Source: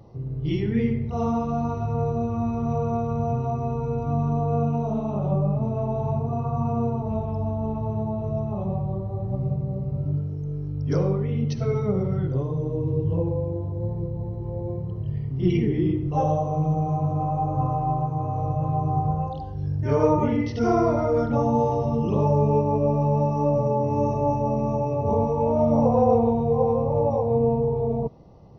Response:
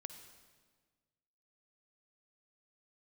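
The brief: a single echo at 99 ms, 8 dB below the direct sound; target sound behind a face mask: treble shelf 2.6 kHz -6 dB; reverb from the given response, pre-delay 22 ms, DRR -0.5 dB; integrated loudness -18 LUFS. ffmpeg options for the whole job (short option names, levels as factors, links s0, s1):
-filter_complex "[0:a]aecho=1:1:99:0.398,asplit=2[s0][s1];[1:a]atrim=start_sample=2205,adelay=22[s2];[s1][s2]afir=irnorm=-1:irlink=0,volume=1.78[s3];[s0][s3]amix=inputs=2:normalize=0,highshelf=f=2600:g=-6,volume=1.33"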